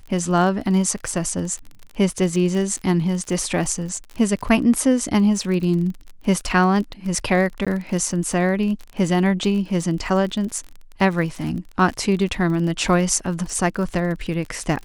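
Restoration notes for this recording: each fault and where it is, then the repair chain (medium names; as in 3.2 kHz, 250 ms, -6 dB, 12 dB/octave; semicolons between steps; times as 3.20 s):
crackle 39 per s -28 dBFS
7.65–7.67 s: dropout 16 ms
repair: de-click; interpolate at 7.65 s, 16 ms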